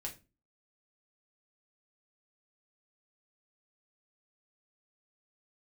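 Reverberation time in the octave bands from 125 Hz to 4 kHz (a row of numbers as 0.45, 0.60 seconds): 0.45, 0.45, 0.35, 0.25, 0.25, 0.25 seconds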